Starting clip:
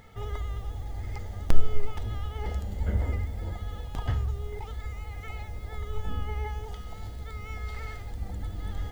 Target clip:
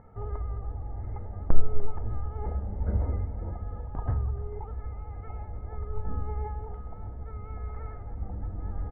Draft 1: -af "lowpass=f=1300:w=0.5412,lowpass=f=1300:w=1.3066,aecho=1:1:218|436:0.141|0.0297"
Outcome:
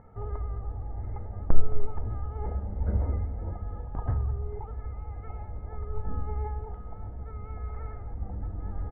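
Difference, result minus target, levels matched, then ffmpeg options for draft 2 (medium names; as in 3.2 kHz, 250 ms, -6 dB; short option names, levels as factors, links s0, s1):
echo 79 ms early
-af "lowpass=f=1300:w=0.5412,lowpass=f=1300:w=1.3066,aecho=1:1:297|594:0.141|0.0297"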